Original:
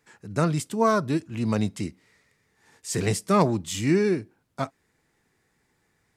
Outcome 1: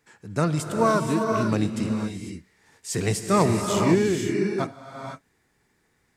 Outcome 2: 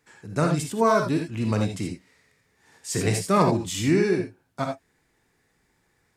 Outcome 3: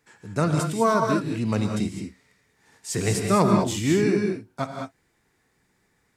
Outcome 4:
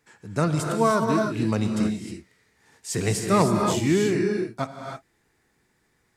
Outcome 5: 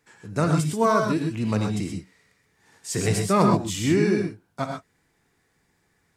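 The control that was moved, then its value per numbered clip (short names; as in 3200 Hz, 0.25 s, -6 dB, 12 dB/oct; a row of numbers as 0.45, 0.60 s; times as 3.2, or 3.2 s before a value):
non-linear reverb, gate: 0.53, 0.1, 0.23, 0.34, 0.15 s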